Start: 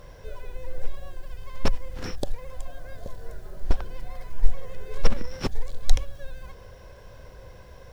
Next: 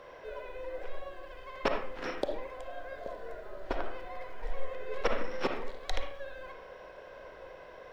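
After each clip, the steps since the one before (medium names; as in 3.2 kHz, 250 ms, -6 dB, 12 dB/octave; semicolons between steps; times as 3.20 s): three-band isolator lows -22 dB, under 290 Hz, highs -17 dB, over 3.6 kHz; reverberation RT60 0.50 s, pre-delay 15 ms, DRR 2.5 dB; trim +1.5 dB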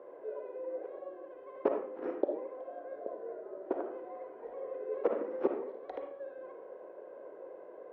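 ladder band-pass 420 Hz, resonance 45%; trim +11.5 dB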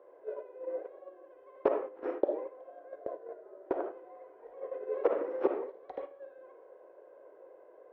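peaking EQ 210 Hz -14.5 dB 0.63 oct; gate -41 dBFS, range -9 dB; trim +3.5 dB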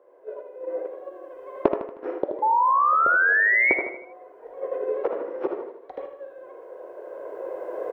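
recorder AGC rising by 10 dB/s; painted sound rise, 2.42–3.74 s, 850–2300 Hz -20 dBFS; feedback delay 78 ms, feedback 46%, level -8 dB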